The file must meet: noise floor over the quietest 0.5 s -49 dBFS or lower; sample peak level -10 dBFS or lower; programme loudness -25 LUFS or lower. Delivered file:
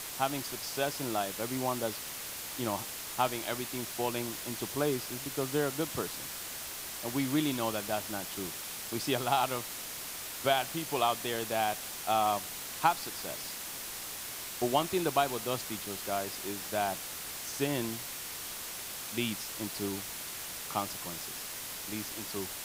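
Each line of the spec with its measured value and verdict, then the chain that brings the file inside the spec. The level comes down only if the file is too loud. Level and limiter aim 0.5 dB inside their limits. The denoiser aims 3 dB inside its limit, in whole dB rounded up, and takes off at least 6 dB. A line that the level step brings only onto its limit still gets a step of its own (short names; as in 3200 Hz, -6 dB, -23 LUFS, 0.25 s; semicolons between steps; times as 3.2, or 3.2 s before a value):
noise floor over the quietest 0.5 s -41 dBFS: fail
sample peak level -12.0 dBFS: OK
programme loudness -33.5 LUFS: OK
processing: denoiser 11 dB, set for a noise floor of -41 dBFS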